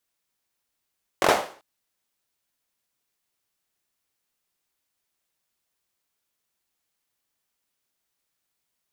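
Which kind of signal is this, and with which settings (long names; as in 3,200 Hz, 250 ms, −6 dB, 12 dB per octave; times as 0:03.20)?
synth clap length 0.39 s, bursts 4, apart 22 ms, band 630 Hz, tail 0.44 s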